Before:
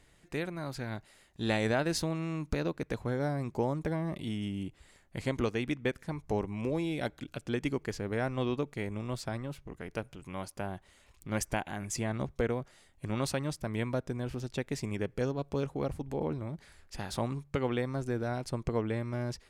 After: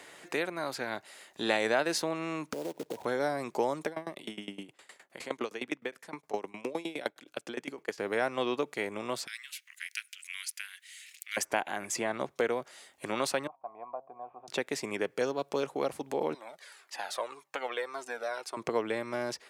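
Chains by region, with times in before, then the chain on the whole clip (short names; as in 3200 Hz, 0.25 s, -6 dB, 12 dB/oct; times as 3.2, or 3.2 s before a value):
2.53–3.05 brick-wall FIR low-pass 1000 Hz + compressor 16:1, threshold -34 dBFS + short-mantissa float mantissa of 2-bit
3.86–7.98 HPF 120 Hz + dB-ramp tremolo decaying 9.7 Hz, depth 22 dB
9.27–11.37 steep high-pass 1900 Hz + high shelf 3900 Hz +8 dB
13.47–14.48 median filter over 9 samples + vocal tract filter a + de-hum 134.2 Hz, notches 7
16.34–18.57 HPF 520 Hz + cascading flanger falling 1.8 Hz
whole clip: HPF 420 Hz 12 dB/oct; three-band squash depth 40%; gain +6 dB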